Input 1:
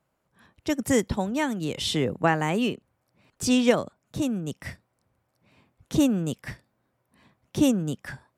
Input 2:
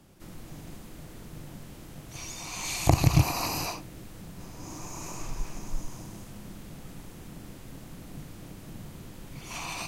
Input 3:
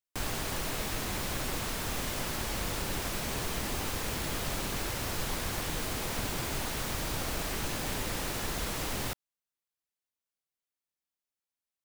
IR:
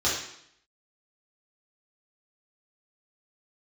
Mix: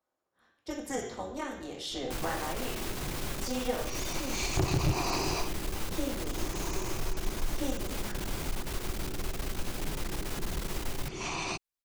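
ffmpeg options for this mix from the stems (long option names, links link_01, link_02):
-filter_complex "[0:a]highpass=280,tremolo=f=270:d=0.857,volume=-10dB,asplit=3[link_01][link_02][link_03];[link_02]volume=-10dB[link_04];[1:a]lowpass=frequency=7300:width=0.5412,lowpass=frequency=7300:width=1.3066,equalizer=frequency=380:width_type=o:width=0.35:gain=13,asoftclip=type=tanh:threshold=-19.5dB,adelay=1700,volume=2.5dB[link_05];[2:a]asubboost=boost=4:cutoff=59,bandreject=frequency=1800:width=27,aeval=exprs='clip(val(0),-1,0.0266)':channel_layout=same,adelay=1950,volume=-1.5dB[link_06];[link_03]apad=whole_len=510529[link_07];[link_05][link_07]sidechaincompress=threshold=-43dB:ratio=8:attack=5.9:release=183[link_08];[3:a]atrim=start_sample=2205[link_09];[link_04][link_09]afir=irnorm=-1:irlink=0[link_10];[link_01][link_08][link_06][link_10]amix=inputs=4:normalize=0,acompressor=threshold=-32dB:ratio=1.5"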